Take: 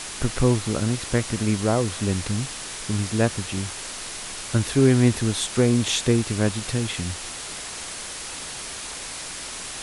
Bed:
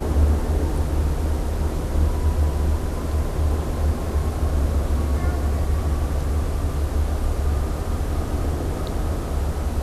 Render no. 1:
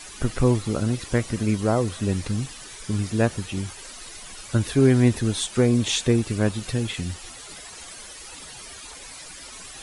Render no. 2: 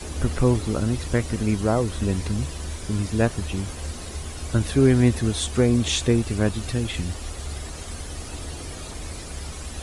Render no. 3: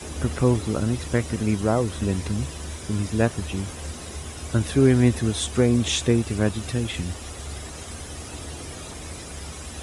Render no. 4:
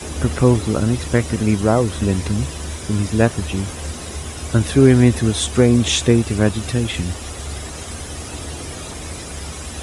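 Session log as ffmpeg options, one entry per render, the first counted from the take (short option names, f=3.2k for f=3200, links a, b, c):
-af "afftdn=nr=12:nf=-35"
-filter_complex "[1:a]volume=-11.5dB[a];[0:a][a]amix=inputs=2:normalize=0"
-af "highpass=69,bandreject=f=4.4k:w=14"
-af "volume=6dB,alimiter=limit=-2dB:level=0:latency=1"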